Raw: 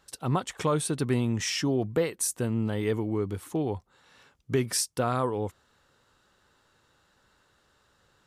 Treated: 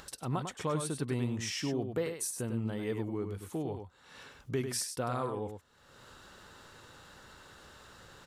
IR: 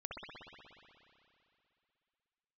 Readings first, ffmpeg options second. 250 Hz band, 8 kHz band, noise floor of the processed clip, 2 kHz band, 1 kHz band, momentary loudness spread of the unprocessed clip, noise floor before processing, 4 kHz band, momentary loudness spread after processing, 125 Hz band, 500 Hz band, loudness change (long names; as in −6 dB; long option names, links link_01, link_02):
−6.5 dB, −6.5 dB, −62 dBFS, −6.0 dB, −6.5 dB, 5 LU, −68 dBFS, −6.5 dB, 20 LU, −6.5 dB, −7.0 dB, −6.5 dB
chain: -af "aecho=1:1:99:0.447,acompressor=mode=upward:threshold=-30dB:ratio=2.5,volume=-7.5dB"